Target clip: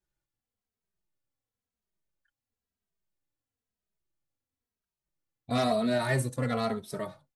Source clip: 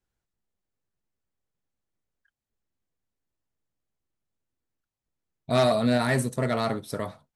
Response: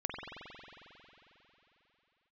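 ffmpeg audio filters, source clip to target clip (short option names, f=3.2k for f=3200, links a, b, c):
-filter_complex "[0:a]asplit=2[a][b];[b]adelay=2.8,afreqshift=-1[c];[a][c]amix=inputs=2:normalize=1,volume=-1dB"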